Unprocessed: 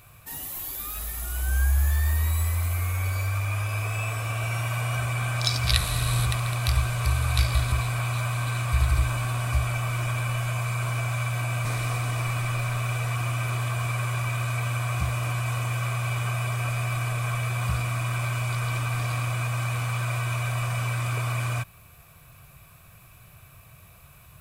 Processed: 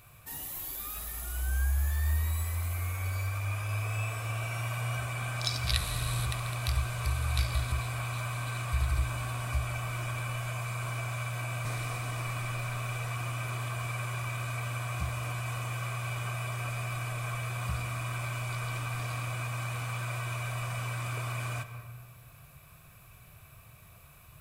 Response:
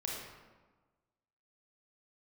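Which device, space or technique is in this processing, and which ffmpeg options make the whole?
ducked reverb: -filter_complex "[0:a]asplit=3[a][b][c];[1:a]atrim=start_sample=2205[d];[b][d]afir=irnorm=-1:irlink=0[e];[c]apad=whole_len=1076088[f];[e][f]sidechaincompress=threshold=-34dB:ratio=8:attack=48:release=229,volume=-3.5dB[g];[a][g]amix=inputs=2:normalize=0,volume=-7.5dB"

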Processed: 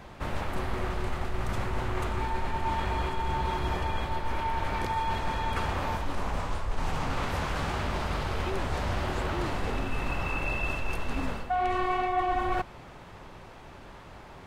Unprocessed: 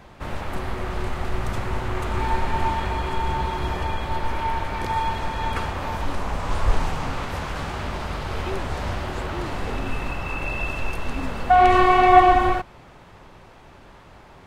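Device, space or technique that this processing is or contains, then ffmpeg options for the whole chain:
compression on the reversed sound: -af "areverse,acompressor=threshold=-25dB:ratio=8,areverse"

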